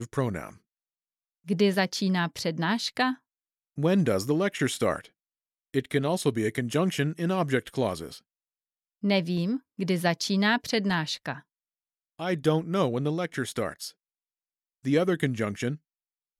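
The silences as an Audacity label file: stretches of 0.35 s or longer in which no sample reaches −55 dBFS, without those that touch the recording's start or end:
0.580000	1.450000	silence
3.180000	3.770000	silence
5.090000	5.740000	silence
8.210000	9.020000	silence
11.420000	12.190000	silence
13.920000	14.840000	silence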